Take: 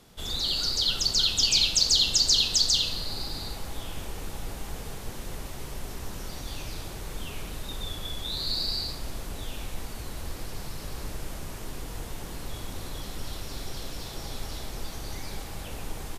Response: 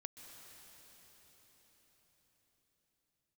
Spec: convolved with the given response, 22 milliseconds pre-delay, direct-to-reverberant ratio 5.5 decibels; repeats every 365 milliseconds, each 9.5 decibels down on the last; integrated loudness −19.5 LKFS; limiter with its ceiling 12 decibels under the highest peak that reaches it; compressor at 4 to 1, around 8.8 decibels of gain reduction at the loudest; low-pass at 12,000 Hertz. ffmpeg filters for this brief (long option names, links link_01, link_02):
-filter_complex "[0:a]lowpass=12000,acompressor=threshold=-29dB:ratio=4,alimiter=level_in=5dB:limit=-24dB:level=0:latency=1,volume=-5dB,aecho=1:1:365|730|1095|1460:0.335|0.111|0.0365|0.012,asplit=2[link_01][link_02];[1:a]atrim=start_sample=2205,adelay=22[link_03];[link_02][link_03]afir=irnorm=-1:irlink=0,volume=-1dB[link_04];[link_01][link_04]amix=inputs=2:normalize=0,volume=18dB"